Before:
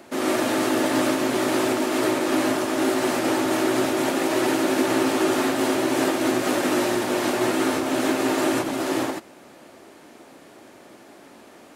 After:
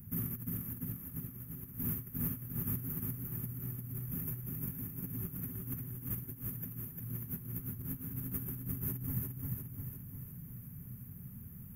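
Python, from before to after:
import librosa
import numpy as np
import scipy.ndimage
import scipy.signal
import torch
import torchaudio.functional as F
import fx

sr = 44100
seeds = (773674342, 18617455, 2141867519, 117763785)

y = scipy.signal.sosfilt(scipy.signal.cheby2(4, 40, [290.0, 8800.0], 'bandstop', fs=sr, output='sos'), x)
y = fx.over_compress(y, sr, threshold_db=-50.0, ratio=-0.5)
y = fx.echo_feedback(y, sr, ms=350, feedback_pct=56, wet_db=-3.5)
y = y * 10.0 ** (9.5 / 20.0)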